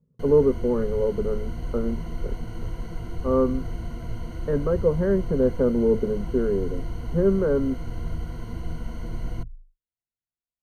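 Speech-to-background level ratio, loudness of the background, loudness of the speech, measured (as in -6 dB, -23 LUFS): 11.0 dB, -35.0 LUFS, -24.0 LUFS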